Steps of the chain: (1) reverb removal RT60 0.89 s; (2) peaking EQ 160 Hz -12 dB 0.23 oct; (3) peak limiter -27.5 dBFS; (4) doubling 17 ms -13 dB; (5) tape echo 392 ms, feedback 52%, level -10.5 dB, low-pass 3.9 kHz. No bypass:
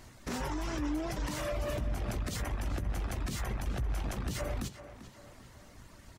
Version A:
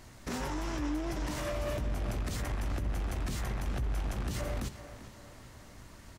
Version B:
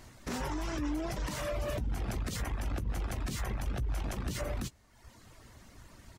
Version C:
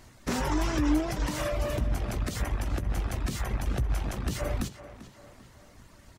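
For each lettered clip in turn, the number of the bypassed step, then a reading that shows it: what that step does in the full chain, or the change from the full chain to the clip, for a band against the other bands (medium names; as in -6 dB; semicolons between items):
1, momentary loudness spread change -2 LU; 5, echo-to-direct -30.5 dB to none; 3, mean gain reduction 3.5 dB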